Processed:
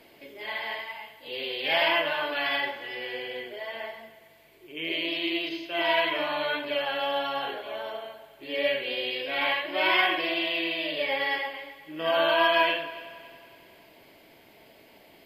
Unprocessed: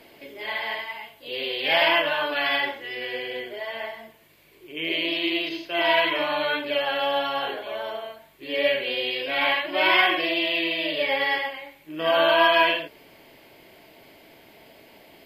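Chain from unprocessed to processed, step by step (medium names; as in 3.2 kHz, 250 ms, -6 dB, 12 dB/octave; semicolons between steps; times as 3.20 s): multi-head delay 93 ms, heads first and third, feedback 56%, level -19 dB; trim -4 dB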